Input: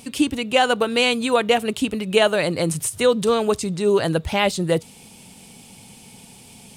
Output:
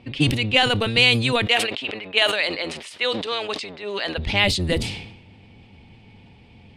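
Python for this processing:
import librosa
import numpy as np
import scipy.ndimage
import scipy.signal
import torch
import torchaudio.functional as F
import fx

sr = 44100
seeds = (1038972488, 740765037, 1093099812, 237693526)

y = fx.octave_divider(x, sr, octaves=1, level_db=3.0)
y = fx.highpass(y, sr, hz=610.0, slope=12, at=(1.45, 4.17), fade=0.02)
y = fx.env_lowpass(y, sr, base_hz=1400.0, full_db=-14.0)
y = fx.band_shelf(y, sr, hz=3000.0, db=9.5, octaves=1.7)
y = fx.sustainer(y, sr, db_per_s=61.0)
y = y * 10.0 ** (-5.0 / 20.0)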